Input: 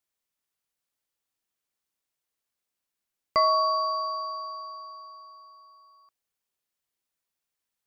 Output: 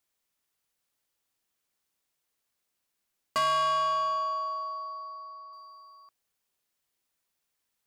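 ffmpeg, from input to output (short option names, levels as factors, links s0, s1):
-filter_complex "[0:a]asettb=1/sr,asplit=3[s0][s1][s2];[s0]atrim=end=3.384[s3];[s1]atrim=start=3.38:end=5.53,asetpts=PTS-STARTPTS,afade=t=in:d=0.004:c=qsin,afade=t=out:st=2.146:d=0.004:c=qsin,lowpass=f=3900:w=0.5412,lowpass=f=3900:w=1.3066[s4];[s2]atrim=start=5.526[s5];[s3][s4]acrossfade=d=0.004:c1=hsin:c2=qsin[s6];[s6][s5]acrossfade=d=0.004:c1=qsin:c2=hsin,asoftclip=type=tanh:threshold=0.0376,volume=1.68"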